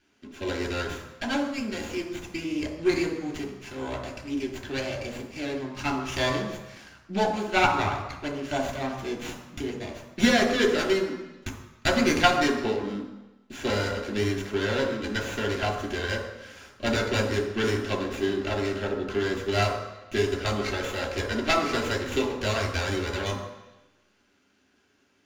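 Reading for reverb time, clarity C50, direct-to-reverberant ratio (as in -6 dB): 1.0 s, 7.5 dB, 1.5 dB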